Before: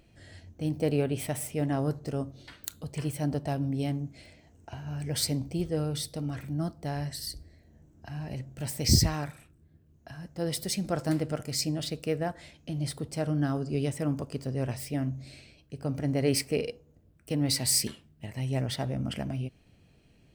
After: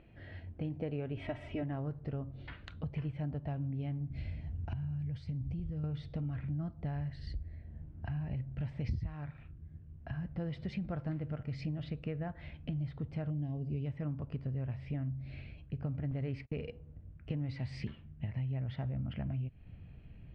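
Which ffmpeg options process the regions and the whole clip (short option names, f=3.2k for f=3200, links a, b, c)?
-filter_complex "[0:a]asettb=1/sr,asplit=3[a][b][c];[a]atrim=end=1.174[d];[b]atrim=start=1.17:end=1.63,asetpts=PTS-STARTPTS,afade=t=in:d=0.004:c=qsin,afade=t=out:st=0.456:d=0.004:c=qsin,equalizer=f=10k:t=o:w=0.32:g=5.5,aecho=1:1:3.1:0.93,atrim=end_sample=20286[e];[c]atrim=start=1.626[f];[d][e]acrossfade=d=0.004:c1=hsin:c2=qsin[g];[g][f]acrossfade=d=0.004:c1=qsin:c2=hsin,asettb=1/sr,asplit=3[h][i][j];[h]atrim=end=4.104[k];[i]atrim=start=4.1:end=5.84,asetpts=PTS-STARTPTS,afade=t=in:d=0.004:c=qsin,afade=t=out:st=1.736:d=0.004:c=qsin,bass=f=250:g=11,treble=f=4k:g=13,asoftclip=type=hard:threshold=-5.5dB,acompressor=threshold=-37dB:ratio=6:attack=3.2:release=140:knee=1:detection=peak[l];[j]atrim=start=5.836[m];[k][l]acrossfade=d=0.004:c1=hsin:c2=qsin[n];[n][m]acrossfade=d=0.004:c1=qsin:c2=hsin,asettb=1/sr,asplit=3[o][p][q];[o]atrim=end=13.304[r];[p]atrim=start=13.3:end=13.86,asetpts=PTS-STARTPTS,afade=t=in:d=0.004:c=qsin,afade=t=out:st=0.556:d=0.004:c=qsin,asuperstop=centerf=1300:order=4:qfactor=0.84,equalizer=f=1.1k:t=o:w=0.23:g=14.5[s];[q]atrim=start=13.856[t];[r][s]acrossfade=d=0.004:c1=hsin:c2=qsin[u];[u][t]acrossfade=d=0.004:c1=qsin:c2=hsin,asettb=1/sr,asplit=3[v][w][x];[v]atrim=end=16.114[y];[w]atrim=start=16.11:end=16.67,asetpts=PTS-STARTPTS,afade=t=in:d=0.004:c=qsin,afade=t=out:st=0.556:d=0.004:c=qsin,agate=range=-36dB:threshold=-42dB:ratio=16:release=100:detection=peak,lowshelf=f=78:g=4.5,acrusher=bits=6:mode=log:mix=0:aa=0.000001[z];[x]atrim=start=16.666[aa];[y][z]acrossfade=d=0.004:c1=hsin:c2=qsin[ab];[ab][aa]acrossfade=d=0.004:c1=qsin:c2=hsin,lowpass=f=2.8k:w=0.5412,lowpass=f=2.8k:w=1.3066,asubboost=boost=4:cutoff=160,acompressor=threshold=-36dB:ratio=6,volume=1dB"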